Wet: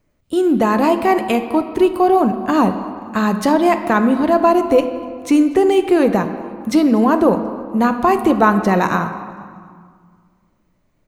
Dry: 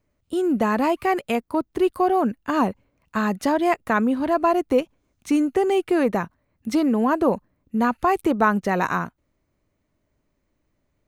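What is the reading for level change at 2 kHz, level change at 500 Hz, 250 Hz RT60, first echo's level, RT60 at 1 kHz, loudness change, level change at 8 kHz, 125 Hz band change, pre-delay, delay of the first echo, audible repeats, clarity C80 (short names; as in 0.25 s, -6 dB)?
+4.0 dB, +7.0 dB, 2.4 s, -22.5 dB, 2.0 s, +6.5 dB, +6.0 dB, +7.5 dB, 4 ms, 0.242 s, 2, 10.5 dB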